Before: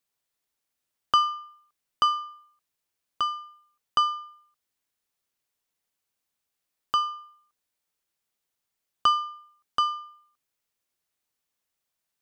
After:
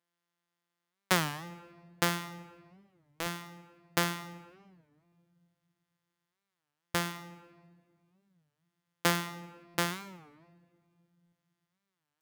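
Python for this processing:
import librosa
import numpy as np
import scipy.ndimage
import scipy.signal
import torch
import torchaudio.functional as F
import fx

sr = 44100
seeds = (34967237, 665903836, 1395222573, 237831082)

y = np.r_[np.sort(x[:len(x) // 256 * 256].reshape(-1, 256), axis=1).ravel(), x[len(x) // 256 * 256:]]
y = fx.highpass(y, sr, hz=790.0, slope=6)
y = fx.room_shoebox(y, sr, seeds[0], volume_m3=2900.0, walls='mixed', distance_m=0.54)
y = fx.buffer_glitch(y, sr, at_s=(3.2, 5.06, 6.88, 9.68, 11.26), block=256, repeats=10)
y = fx.record_warp(y, sr, rpm=33.33, depth_cents=250.0)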